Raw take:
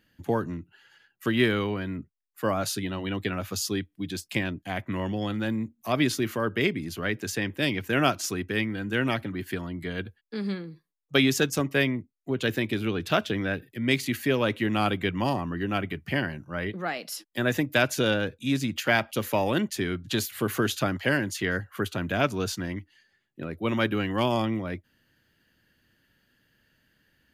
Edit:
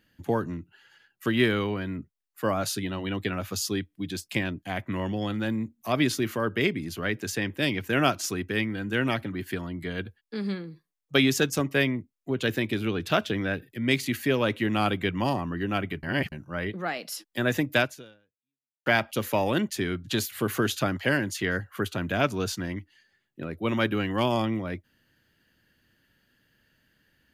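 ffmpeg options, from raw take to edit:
-filter_complex "[0:a]asplit=4[s0][s1][s2][s3];[s0]atrim=end=16.032[s4];[s1]atrim=start=16.028:end=16.322,asetpts=PTS-STARTPTS,areverse[s5];[s2]atrim=start=16.318:end=18.86,asetpts=PTS-STARTPTS,afade=t=out:st=1.482:d=1.06:c=exp[s6];[s3]atrim=start=18.86,asetpts=PTS-STARTPTS,afade=t=in:d=0.004:c=hsin[s7];[s4][s5]acrossfade=d=0.004:c1=hsin:c2=hsin[s8];[s6][s7]concat=n=2:v=0:a=1[s9];[s8][s9]acrossfade=d=0.004:c1=hsin:c2=hsin"

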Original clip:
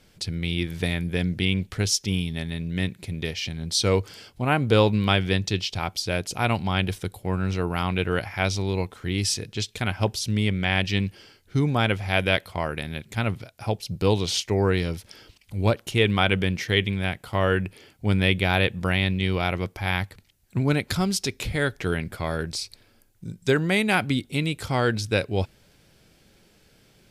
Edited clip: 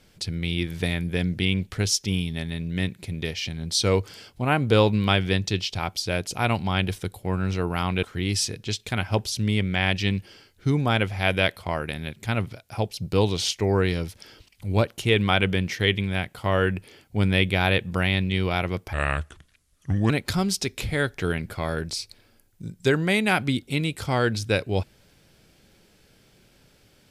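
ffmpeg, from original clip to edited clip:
-filter_complex "[0:a]asplit=4[s0][s1][s2][s3];[s0]atrim=end=8.032[s4];[s1]atrim=start=8.918:end=19.824[s5];[s2]atrim=start=19.82:end=20.72,asetpts=PTS-STARTPTS,asetrate=33957,aresample=44100,atrim=end_sample=51545,asetpts=PTS-STARTPTS[s6];[s3]atrim=start=20.716[s7];[s4][s5]acrossfade=d=0.004:c1=hsin:c2=hsin[s8];[s8][s6]acrossfade=d=0.004:c1=hsin:c2=hsin[s9];[s9][s7]acrossfade=d=0.004:c1=hsin:c2=hsin"

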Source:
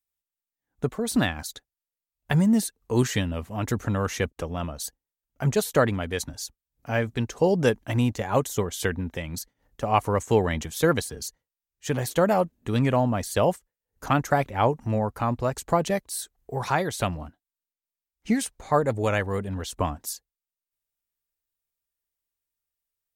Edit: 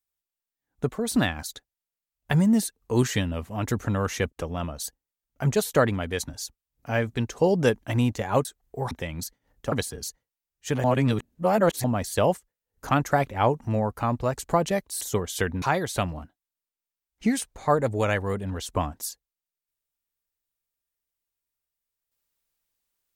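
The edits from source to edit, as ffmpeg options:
-filter_complex "[0:a]asplit=8[s0][s1][s2][s3][s4][s5][s6][s7];[s0]atrim=end=8.452[s8];[s1]atrim=start=16.198:end=16.662[s9];[s2]atrim=start=9.058:end=9.872[s10];[s3]atrim=start=10.908:end=12.032[s11];[s4]atrim=start=12.028:end=13.032,asetpts=PTS-STARTPTS,areverse[s12];[s5]atrim=start=13.028:end=16.202[s13];[s6]atrim=start=8.448:end=9.062[s14];[s7]atrim=start=16.658[s15];[s8][s9]acrossfade=d=0.004:c1=hsin:c2=hsin[s16];[s16][s10]acrossfade=d=0.004:c1=hsin:c2=hsin[s17];[s17][s11]acrossfade=d=0.004:c1=hsin:c2=hsin[s18];[s18][s12]acrossfade=d=0.004:c1=hsin:c2=hsin[s19];[s19][s13]acrossfade=d=0.004:c1=hsin:c2=hsin[s20];[s20][s14]acrossfade=d=0.004:c1=hsin:c2=hsin[s21];[s21][s15]acrossfade=d=0.004:c1=hsin:c2=hsin"

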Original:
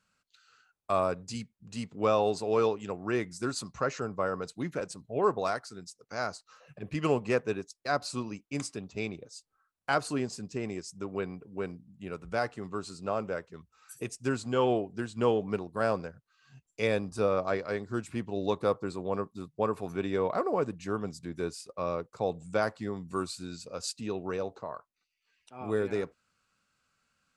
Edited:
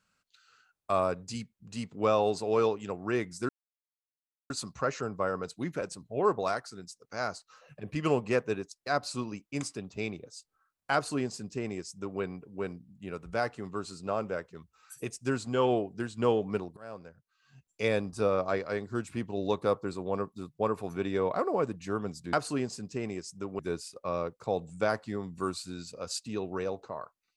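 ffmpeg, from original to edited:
-filter_complex "[0:a]asplit=5[s0][s1][s2][s3][s4];[s0]atrim=end=3.49,asetpts=PTS-STARTPTS,afade=t=out:st=3.486:d=0.004:c=hsin,apad=pad_dur=1.01[s5];[s1]atrim=start=3.49:end=15.76,asetpts=PTS-STARTPTS,afade=t=in:d=0.004:c=hsin,afade=t=out:st=12.266:d=0.004:c=hsin:silence=0.0630957[s6];[s2]atrim=start=15.76:end=21.322,asetpts=PTS-STARTPTS,afade=t=in:d=1.08:silence=0.0630957[s7];[s3]atrim=start=9.928:end=11.192[s8];[s4]atrim=start=21.318[s9];[s5][s6][s7]concat=n=3:v=0:a=1[s10];[s10][s8]acrossfade=d=0.004:c1=hsin:c2=hsin[s11];[s11][s9]acrossfade=d=0.004:c1=hsin:c2=hsin"

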